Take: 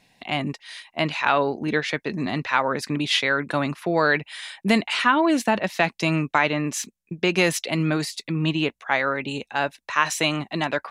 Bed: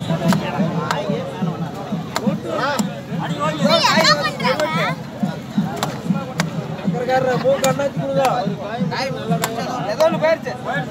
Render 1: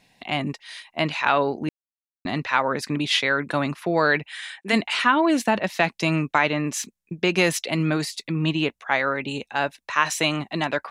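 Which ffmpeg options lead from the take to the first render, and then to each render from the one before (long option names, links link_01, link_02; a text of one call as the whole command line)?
ffmpeg -i in.wav -filter_complex "[0:a]asplit=3[link_01][link_02][link_03];[link_01]afade=type=out:start_time=4.26:duration=0.02[link_04];[link_02]highpass=400,equalizer=frequency=610:width_type=q:width=4:gain=-7,equalizer=frequency=960:width_type=q:width=4:gain=-4,equalizer=frequency=1700:width_type=q:width=4:gain=5,equalizer=frequency=4900:width_type=q:width=4:gain=-5,lowpass=frequency=9800:width=0.5412,lowpass=frequency=9800:width=1.3066,afade=type=in:start_time=4.26:duration=0.02,afade=type=out:start_time=4.72:duration=0.02[link_05];[link_03]afade=type=in:start_time=4.72:duration=0.02[link_06];[link_04][link_05][link_06]amix=inputs=3:normalize=0,asplit=3[link_07][link_08][link_09];[link_07]atrim=end=1.69,asetpts=PTS-STARTPTS,afade=type=out:start_time=1.686:duration=0.004:curve=hsin[link_10];[link_08]atrim=start=1.69:end=2.25,asetpts=PTS-STARTPTS,volume=0[link_11];[link_09]atrim=start=2.25,asetpts=PTS-STARTPTS,afade=type=in:duration=0.004:curve=hsin[link_12];[link_10][link_11][link_12]concat=n=3:v=0:a=1" out.wav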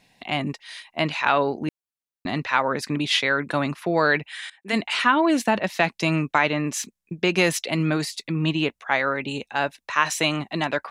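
ffmpeg -i in.wav -filter_complex "[0:a]asplit=2[link_01][link_02];[link_01]atrim=end=4.5,asetpts=PTS-STARTPTS,afade=type=out:start_time=4.496:duration=0.004:curve=hsin:silence=0.0891251[link_03];[link_02]atrim=start=4.5,asetpts=PTS-STARTPTS,afade=type=in:duration=0.51:curve=qsin:silence=0.0891251[link_04];[link_03][link_04]concat=n=2:v=0:a=1" out.wav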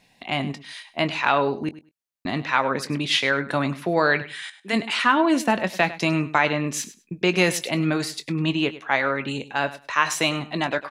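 ffmpeg -i in.wav -filter_complex "[0:a]asplit=2[link_01][link_02];[link_02]adelay=22,volume=-13dB[link_03];[link_01][link_03]amix=inputs=2:normalize=0,aecho=1:1:101|202:0.158|0.0254" out.wav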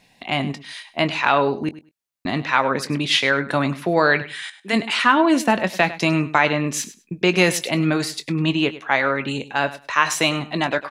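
ffmpeg -i in.wav -af "volume=3dB,alimiter=limit=-2dB:level=0:latency=1" out.wav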